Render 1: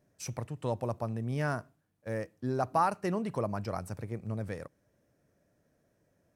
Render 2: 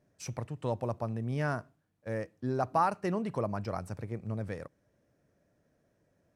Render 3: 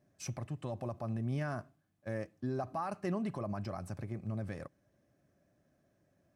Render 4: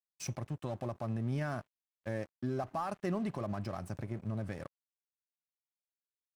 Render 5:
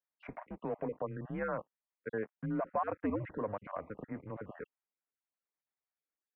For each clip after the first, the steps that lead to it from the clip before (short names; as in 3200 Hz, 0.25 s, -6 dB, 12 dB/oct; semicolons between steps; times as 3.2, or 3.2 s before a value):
high shelf 9800 Hz -10.5 dB
limiter -27 dBFS, peak gain reduction 11 dB; notch comb 470 Hz
in parallel at -1 dB: compressor 8:1, threshold -46 dBFS, peak gain reduction 14.5 dB; on the sum: crossover distortion -52 dBFS
random spectral dropouts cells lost 30%; mistuned SSB -100 Hz 290–2300 Hz; gain +4 dB